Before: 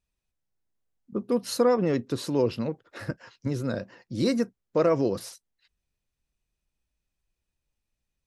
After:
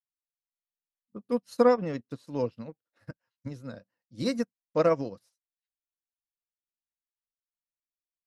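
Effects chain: bell 380 Hz -11 dB 0.26 oct; upward expander 2.5:1, over -44 dBFS; gain +3.5 dB

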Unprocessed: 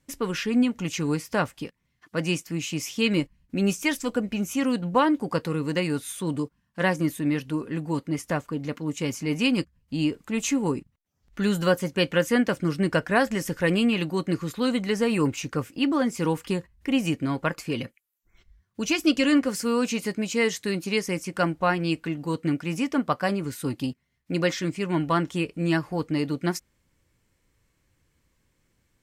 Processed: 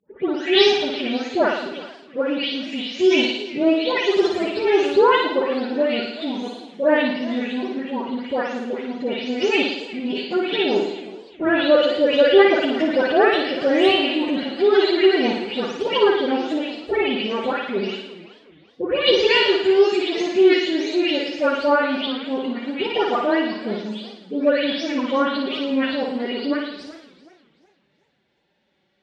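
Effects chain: spectral delay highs late, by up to 0.392 s; high shelf 3200 Hz +4 dB; formant-preserving pitch shift +8.5 st; speaker cabinet 170–4100 Hz, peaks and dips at 260 Hz -4 dB, 390 Hz +8 dB, 630 Hz +7 dB, 3600 Hz +7 dB; flutter echo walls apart 9.6 m, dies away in 0.79 s; warbling echo 0.371 s, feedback 33%, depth 215 cents, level -18 dB; gain +3 dB

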